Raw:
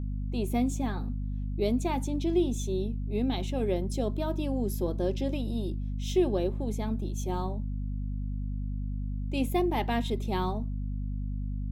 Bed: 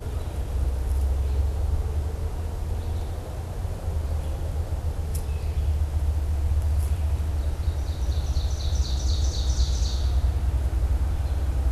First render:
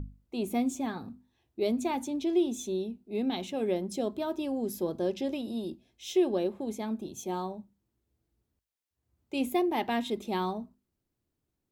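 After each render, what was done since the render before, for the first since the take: hum notches 50/100/150/200/250 Hz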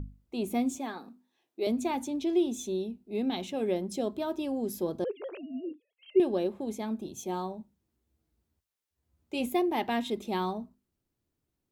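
0.78–1.67 s: Bessel high-pass 330 Hz, order 4; 5.04–6.20 s: formants replaced by sine waves; 7.59–9.46 s: doubling 13 ms -6 dB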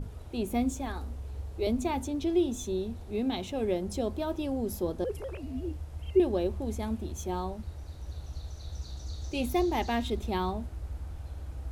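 add bed -14.5 dB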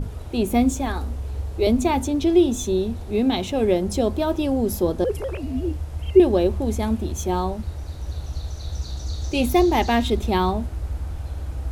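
trim +10 dB

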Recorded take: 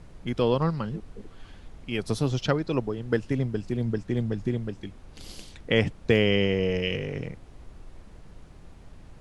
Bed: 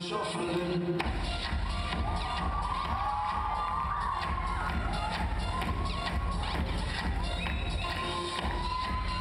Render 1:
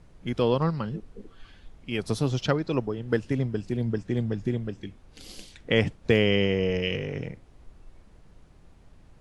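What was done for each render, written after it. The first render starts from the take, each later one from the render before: noise print and reduce 6 dB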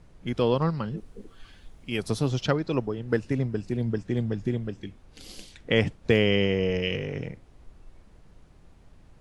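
0.97–2.08 s: treble shelf 7.5 kHz +10 dB; 3.02–3.79 s: band-stop 3.2 kHz, Q 10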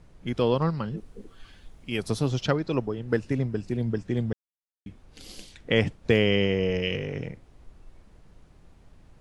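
4.33–4.86 s: mute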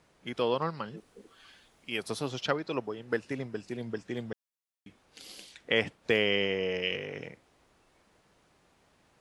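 high-pass 660 Hz 6 dB/octave; dynamic bell 6.5 kHz, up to -4 dB, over -51 dBFS, Q 1.1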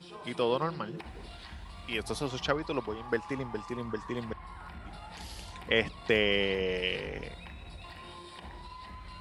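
add bed -13.5 dB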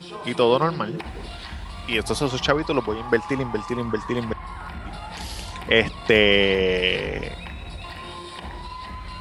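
trim +10.5 dB; peak limiter -3 dBFS, peak gain reduction 2.5 dB

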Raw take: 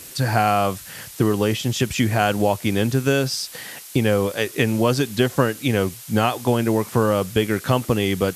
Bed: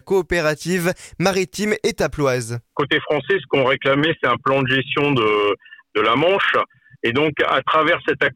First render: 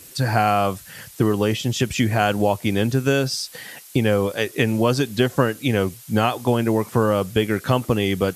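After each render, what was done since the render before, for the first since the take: noise reduction 6 dB, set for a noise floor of -40 dBFS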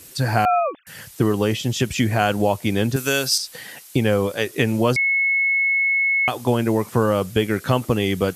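0.45–0.87 s: formants replaced by sine waves; 2.96–3.38 s: tilt EQ +3 dB/octave; 4.96–6.28 s: bleep 2.19 kHz -16 dBFS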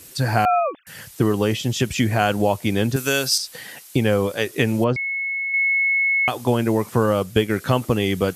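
4.84–5.54 s: tape spacing loss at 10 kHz 28 dB; 7.04–7.50 s: transient shaper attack +2 dB, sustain -3 dB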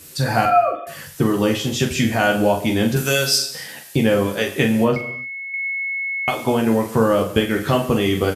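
on a send: early reflections 13 ms -5.5 dB, 44 ms -7 dB; on the sum: gated-style reverb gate 320 ms falling, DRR 8 dB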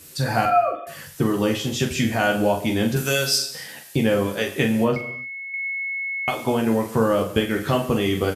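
trim -3 dB

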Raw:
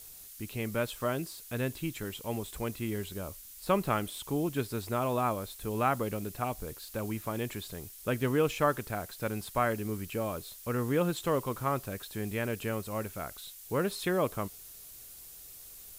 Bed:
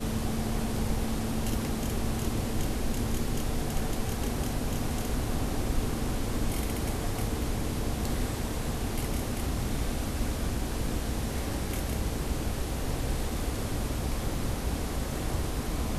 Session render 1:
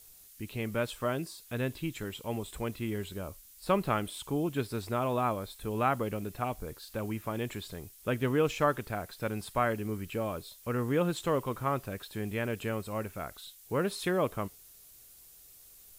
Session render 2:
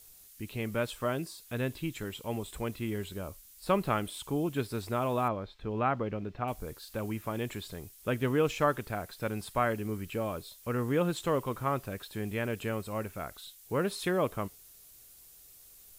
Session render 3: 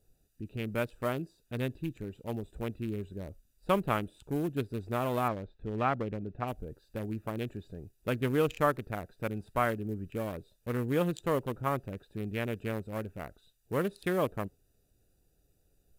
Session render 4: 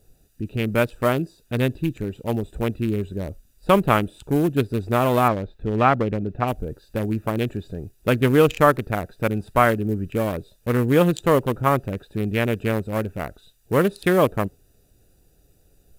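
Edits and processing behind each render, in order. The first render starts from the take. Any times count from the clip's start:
noise print and reduce 6 dB
5.28–6.48 s: distance through air 220 m
local Wiener filter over 41 samples; treble shelf 4 kHz +7.5 dB
trim +12 dB; peak limiter -3 dBFS, peak gain reduction 2 dB

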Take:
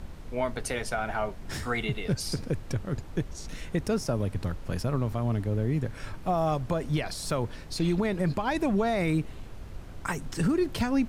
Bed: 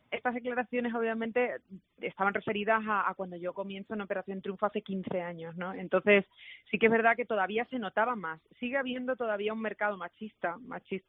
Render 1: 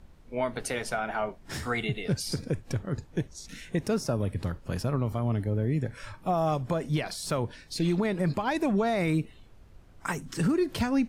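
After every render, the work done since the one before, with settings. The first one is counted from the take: noise print and reduce 12 dB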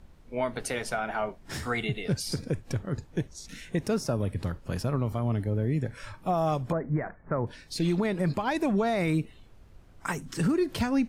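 6.72–7.47 s: steep low-pass 2 kHz 72 dB/octave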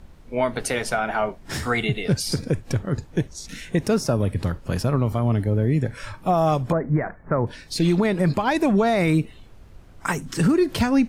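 trim +7 dB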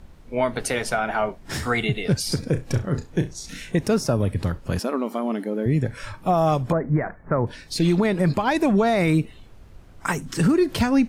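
2.49–3.72 s: flutter echo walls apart 5.7 m, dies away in 0.22 s; 4.79–5.66 s: brick-wall FIR high-pass 190 Hz

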